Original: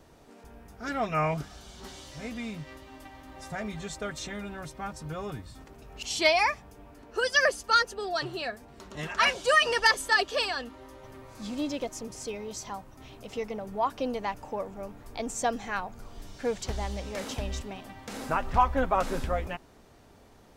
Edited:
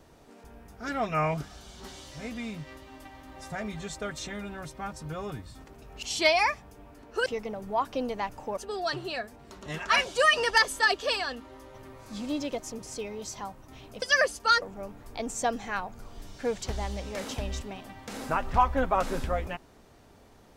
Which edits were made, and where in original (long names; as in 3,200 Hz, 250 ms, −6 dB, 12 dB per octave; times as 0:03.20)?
0:07.26–0:07.86: swap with 0:13.31–0:14.62